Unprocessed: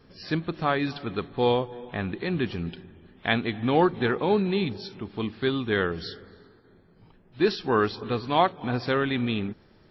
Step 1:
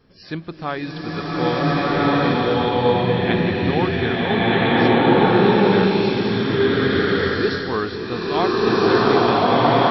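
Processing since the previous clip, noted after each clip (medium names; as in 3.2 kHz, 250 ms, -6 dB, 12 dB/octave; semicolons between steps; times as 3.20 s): swelling reverb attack 1470 ms, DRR -11 dB; trim -1.5 dB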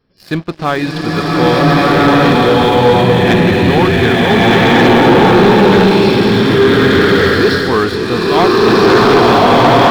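waveshaping leveller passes 3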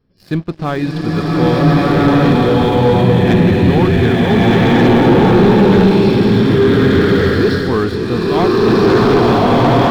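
bass shelf 390 Hz +10.5 dB; trim -7.5 dB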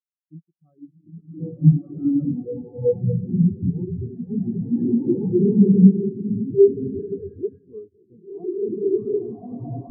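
spectral contrast expander 4:1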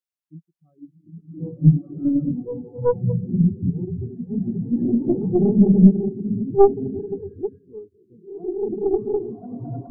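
tracing distortion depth 0.26 ms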